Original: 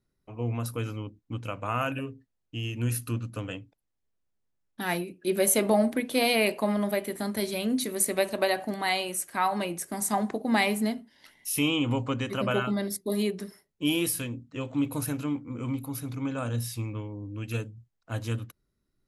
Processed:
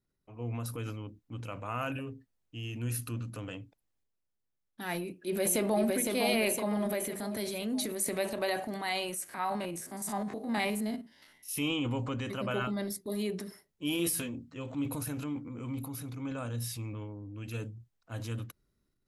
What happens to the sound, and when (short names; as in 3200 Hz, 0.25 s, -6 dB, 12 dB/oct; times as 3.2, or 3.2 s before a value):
4.94–5.94 echo throw 0.51 s, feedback 50%, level -4.5 dB
9.24–11.49 stepped spectrum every 50 ms
13.98–14.57 doubler 12 ms -4 dB
whole clip: transient shaper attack -2 dB, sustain +7 dB; gain -6 dB